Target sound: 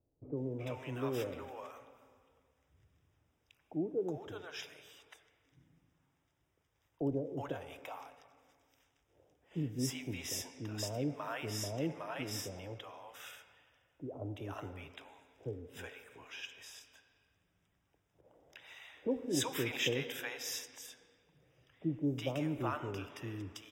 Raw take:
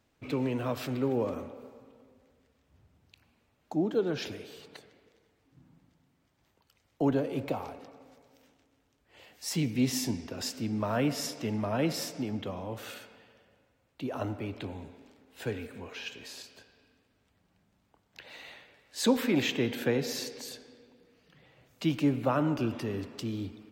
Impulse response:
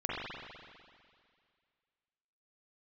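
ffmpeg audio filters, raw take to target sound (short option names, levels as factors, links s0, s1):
-filter_complex "[0:a]asuperstop=centerf=4300:order=8:qfactor=4.3,equalizer=f=220:w=3.9:g=-12,acrossover=split=670[s0][s1];[s1]adelay=370[s2];[s0][s2]amix=inputs=2:normalize=0,asettb=1/sr,asplit=3[s3][s4][s5];[s3]atrim=end=18.214[s6];[s4]atrim=start=18.21:end=20.59,asetpts=PTS-STARTPTS,afade=t=in:d=0.004:c=qsin,afade=t=out:st=2.376:d=0.004:c=qsin,adynamicequalizer=threshold=0.00631:dfrequency=2300:dqfactor=0.7:tfrequency=2300:tqfactor=0.7:attack=5:release=100:ratio=0.375:range=2:mode=boostabove:tftype=highshelf[s7];[s5]atrim=start=20.586[s8];[s6][s7]acrossfade=d=0.004:c1=hsin:c2=qsin[s9];[s9][s8]acrossfade=d=0.004:c1=qsin:c2=hsin,volume=0.562"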